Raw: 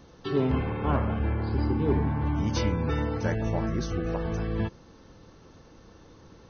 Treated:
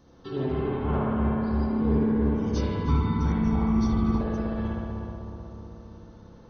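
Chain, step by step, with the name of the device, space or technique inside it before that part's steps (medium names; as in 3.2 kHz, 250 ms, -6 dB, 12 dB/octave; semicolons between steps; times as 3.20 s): peaking EQ 2.4 kHz -5.5 dB 0.89 oct; dub delay into a spring reverb (filtered feedback delay 312 ms, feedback 64%, low-pass 1.3 kHz, level -3.5 dB; spring tank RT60 1.6 s, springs 59 ms, chirp 20 ms, DRR -3.5 dB); 2.88–4.21 s: comb 0.9 ms, depth 85%; trim -6 dB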